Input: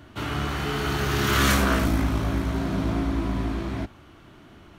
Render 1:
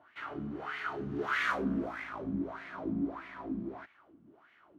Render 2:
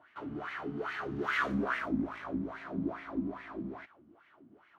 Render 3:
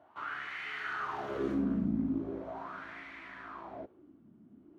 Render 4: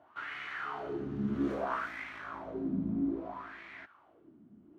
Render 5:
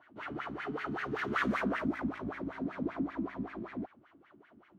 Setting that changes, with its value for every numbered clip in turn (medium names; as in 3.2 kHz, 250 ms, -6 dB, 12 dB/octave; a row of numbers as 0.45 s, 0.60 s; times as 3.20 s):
wah-wah, rate: 1.6 Hz, 2.4 Hz, 0.4 Hz, 0.61 Hz, 5.2 Hz